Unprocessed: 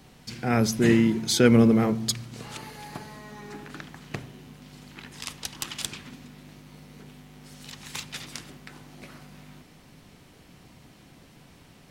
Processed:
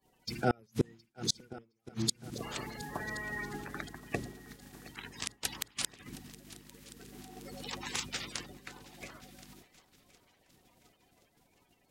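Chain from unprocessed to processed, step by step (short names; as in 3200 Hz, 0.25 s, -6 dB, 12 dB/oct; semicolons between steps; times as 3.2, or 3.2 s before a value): bin magnitudes rounded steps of 30 dB; 7.12–7.95 bell 730 Hz +9 dB 2.5 oct; flipped gate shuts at -14 dBFS, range -37 dB; 2.99–3.45 bell 1900 Hz +12.5 dB 0.26 oct; multi-head echo 0.358 s, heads second and third, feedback 58%, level -18.5 dB; expander -40 dBFS; mismatched tape noise reduction encoder only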